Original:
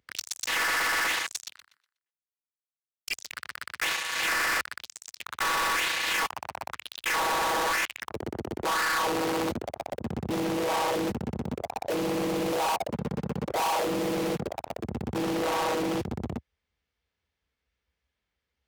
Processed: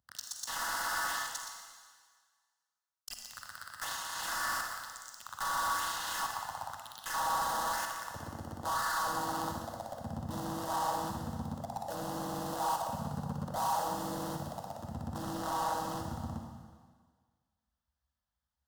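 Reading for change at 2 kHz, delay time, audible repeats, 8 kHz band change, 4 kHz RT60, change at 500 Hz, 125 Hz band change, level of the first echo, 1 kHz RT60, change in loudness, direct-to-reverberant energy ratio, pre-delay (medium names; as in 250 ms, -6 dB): -10.5 dB, no echo, no echo, -4.5 dB, 1.6 s, -11.5 dB, -4.5 dB, no echo, 1.6 s, -7.5 dB, 2.0 dB, 39 ms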